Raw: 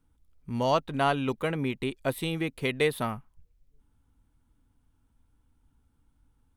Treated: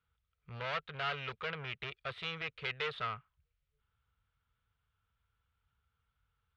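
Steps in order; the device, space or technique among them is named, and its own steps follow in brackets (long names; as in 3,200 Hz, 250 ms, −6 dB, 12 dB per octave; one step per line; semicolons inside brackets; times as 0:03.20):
scooped metal amplifier (tube saturation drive 31 dB, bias 0.75; loudspeaker in its box 91–3,500 Hz, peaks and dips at 260 Hz −5 dB, 440 Hz +8 dB, 890 Hz −6 dB, 1,300 Hz +7 dB; guitar amp tone stack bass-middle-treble 10-0-10)
level +7.5 dB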